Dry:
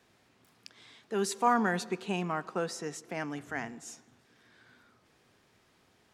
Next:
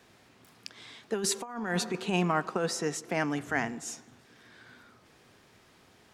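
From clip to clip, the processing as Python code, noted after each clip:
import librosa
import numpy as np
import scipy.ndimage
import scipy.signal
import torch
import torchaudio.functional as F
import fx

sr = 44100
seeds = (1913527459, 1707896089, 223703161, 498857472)

y = fx.over_compress(x, sr, threshold_db=-32.0, ratio=-0.5)
y = y * librosa.db_to_amplitude(4.0)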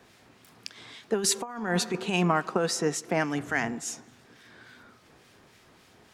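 y = fx.harmonic_tremolo(x, sr, hz=3.5, depth_pct=50, crossover_hz=1600.0)
y = y * librosa.db_to_amplitude(5.0)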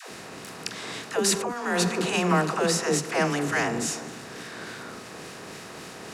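y = fx.bin_compress(x, sr, power=0.6)
y = fx.dispersion(y, sr, late='lows', ms=112.0, hz=420.0)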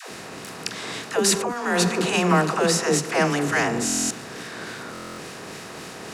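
y = fx.buffer_glitch(x, sr, at_s=(3.85, 4.93), block=1024, repeats=10)
y = y * librosa.db_to_amplitude(3.5)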